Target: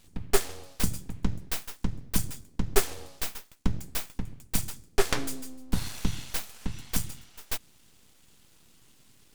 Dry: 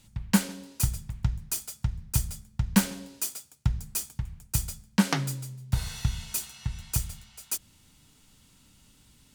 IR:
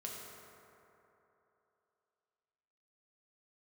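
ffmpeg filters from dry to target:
-af "aeval=exprs='abs(val(0))':channel_layout=same,volume=1.5dB"

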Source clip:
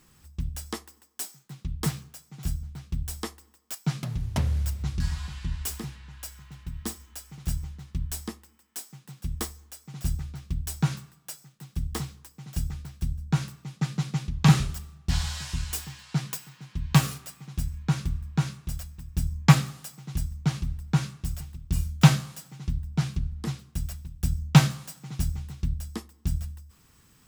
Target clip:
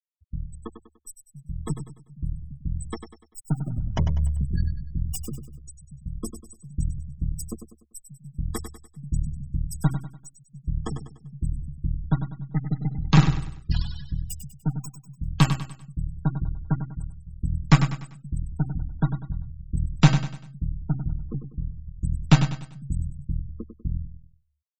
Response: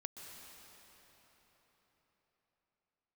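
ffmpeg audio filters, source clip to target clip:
-af "aeval=exprs='if(lt(val(0),0),0.447*val(0),val(0))':channel_layout=same,dynaudnorm=framelen=850:gausssize=7:maxgain=4dB,afftfilt=real='re*gte(hypot(re,im),0.0398)':imag='im*gte(hypot(re,im),0.0398)':win_size=1024:overlap=0.75,atempo=1.1,aecho=1:1:98|196|294|392:0.355|0.142|0.0568|0.0227,volume=1dB"

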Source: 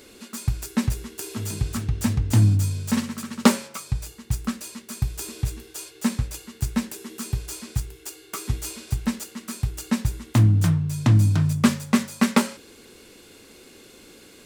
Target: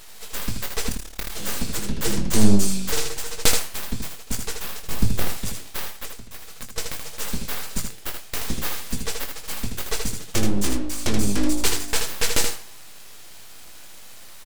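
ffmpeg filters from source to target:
ffmpeg -i in.wav -filter_complex "[0:a]flanger=delay=4.1:depth=5.8:regen=51:speed=0.19:shape=triangular,acrossover=split=200|2000[link_01][link_02][link_03];[link_02]asoftclip=type=tanh:threshold=-22.5dB[link_04];[link_01][link_04][link_03]amix=inputs=3:normalize=0,asettb=1/sr,asplit=3[link_05][link_06][link_07];[link_05]atrim=end=0.894[link_08];[link_06]atrim=start=0.89:end=1.3,asetpts=PTS-STARTPTS,afade=type=in:duration=0.004:curve=qsin,afade=type=out:start_time=0.406:duration=0.004:curve=qsin,tremolo=f=36:d=0.974[link_09];[link_07]atrim=start=1.296[link_10];[link_08][link_09]acrossfade=duration=0.004:curve1=hsin:curve2=qsin[link_11];[link_11][link_10]acrossfade=duration=0.004:curve1=qsin:curve2=hsin,asettb=1/sr,asplit=3[link_12][link_13][link_14];[link_12]atrim=end=5.914[link_15];[link_13]atrim=start=5.91:end=6.78,asetpts=PTS-STARTPTS,afade=type=in:duration=0.004:curve=qsin,afade=type=out:start_time=0.866:duration=0.004:curve=qsin,acompressor=threshold=-40dB:ratio=6[link_16];[link_14]atrim=start=6.776[link_17];[link_15][link_16]acrossfade=duration=0.004:curve1=hsin:curve2=qsin[link_18];[link_18][link_17]acrossfade=duration=0.004:curve1=qsin:curve2=hsin,equalizer=frequency=6600:width=0.38:gain=10.5,aeval=exprs='abs(val(0))':channel_layout=same,asettb=1/sr,asplit=3[link_19][link_20][link_21];[link_19]atrim=end=4.834[link_22];[link_20]atrim=start=4.83:end=5.29,asetpts=PTS-STARTPTS,afade=type=in:duration=0.004:curve=qsin,afade=type=out:start_time=0.456:duration=0.004:curve=qsin,lowshelf=frequency=500:gain=10[link_23];[link_21]atrim=start=5.286[link_24];[link_22][link_23]acrossfade=duration=0.004:curve1=hsin:curve2=qsin[link_25];[link_25][link_24]acrossfade=duration=0.004:curve1=qsin:curve2=hsin,aecho=1:1:20|79:0.355|0.531,volume=3.5dB" out.wav

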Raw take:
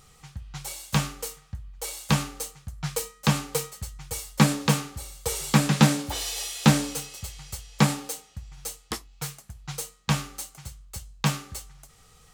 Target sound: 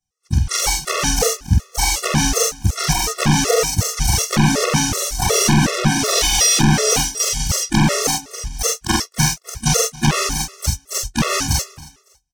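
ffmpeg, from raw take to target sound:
ffmpeg -i in.wav -filter_complex "[0:a]afftfilt=real='re':imag='-im':win_size=4096:overlap=0.75,acrossover=split=3400[link_01][link_02];[link_02]acompressor=threshold=-48dB:ratio=4:attack=1:release=60[link_03];[link_01][link_03]amix=inputs=2:normalize=0,agate=range=-51dB:threshold=-46dB:ratio=16:detection=peak,equalizer=frequency=5800:width=3:gain=14,acompressor=threshold=-30dB:ratio=5,asplit=2[link_04][link_05];[link_05]asetrate=66075,aresample=44100,atempo=0.66742,volume=-10dB[link_06];[link_04][link_06]amix=inputs=2:normalize=0,aeval=exprs='clip(val(0),-1,0.0158)':channel_layout=same,asplit=2[link_07][link_08];[link_08]aecho=0:1:276|552:0.0891|0.0223[link_09];[link_07][link_09]amix=inputs=2:normalize=0,alimiter=level_in=28.5dB:limit=-1dB:release=50:level=0:latency=1,afftfilt=real='re*gt(sin(2*PI*2.7*pts/sr)*(1-2*mod(floor(b*sr/1024/360),2)),0)':imag='im*gt(sin(2*PI*2.7*pts/sr)*(1-2*mod(floor(b*sr/1024/360),2)),0)':win_size=1024:overlap=0.75,volume=-1dB" out.wav

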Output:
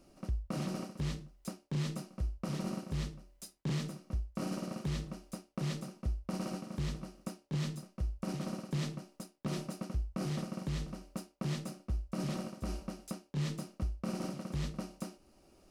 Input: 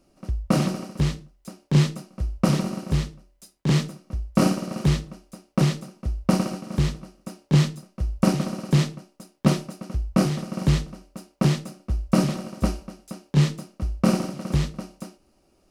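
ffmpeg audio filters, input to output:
ffmpeg -i in.wav -af "areverse,acompressor=threshold=-28dB:ratio=6,areverse,alimiter=level_in=3dB:limit=-24dB:level=0:latency=1:release=426,volume=-3dB" out.wav

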